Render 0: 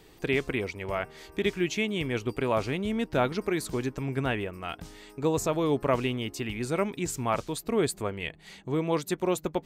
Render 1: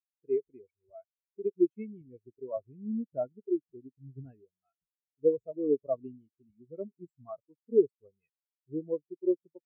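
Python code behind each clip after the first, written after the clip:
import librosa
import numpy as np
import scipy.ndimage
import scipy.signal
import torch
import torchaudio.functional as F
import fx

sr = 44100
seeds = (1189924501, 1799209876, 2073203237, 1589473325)

y = fx.spectral_expand(x, sr, expansion=4.0)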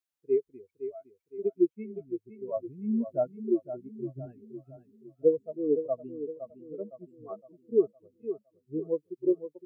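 y = fx.rider(x, sr, range_db=3, speed_s=0.5)
y = fx.echo_feedback(y, sr, ms=512, feedback_pct=44, wet_db=-10.5)
y = y * 10.0 ** (2.5 / 20.0)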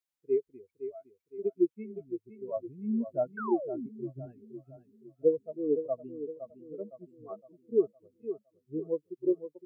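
y = fx.spec_paint(x, sr, seeds[0], shape='fall', start_s=3.37, length_s=0.5, low_hz=200.0, high_hz=1600.0, level_db=-35.0)
y = y * 10.0 ** (-2.0 / 20.0)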